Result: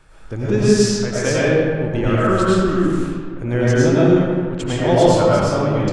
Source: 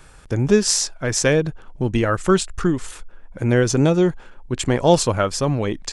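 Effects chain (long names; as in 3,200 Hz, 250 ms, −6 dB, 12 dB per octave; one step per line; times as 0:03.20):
low-pass filter 4,000 Hz 6 dB per octave
comb and all-pass reverb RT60 1.9 s, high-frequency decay 0.55×, pre-delay 65 ms, DRR −8.5 dB
level −5.5 dB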